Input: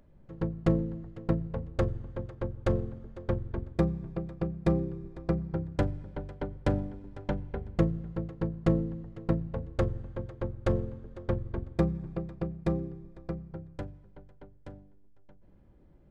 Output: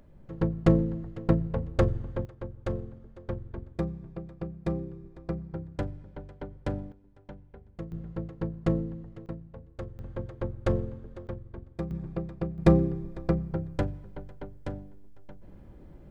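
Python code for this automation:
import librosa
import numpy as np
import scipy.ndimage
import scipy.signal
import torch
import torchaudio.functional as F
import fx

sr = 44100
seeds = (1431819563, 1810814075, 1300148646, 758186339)

y = fx.gain(x, sr, db=fx.steps((0.0, 4.5), (2.25, -4.5), (6.92, -14.0), (7.92, -1.0), (9.26, -11.0), (9.99, 1.0), (11.27, -8.0), (11.91, 1.5), (12.58, 10.0)))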